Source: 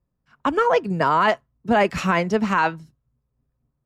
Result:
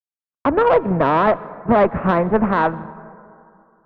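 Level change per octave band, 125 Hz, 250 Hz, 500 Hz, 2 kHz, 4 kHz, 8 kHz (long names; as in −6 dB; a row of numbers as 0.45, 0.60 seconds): +4.5 dB, +4.5 dB, +5.0 dB, −1.5 dB, −6.0 dB, below −20 dB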